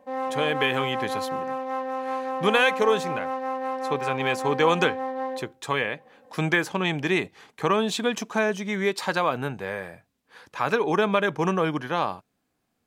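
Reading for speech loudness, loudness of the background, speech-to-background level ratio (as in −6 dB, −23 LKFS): −25.5 LKFS, −30.0 LKFS, 4.5 dB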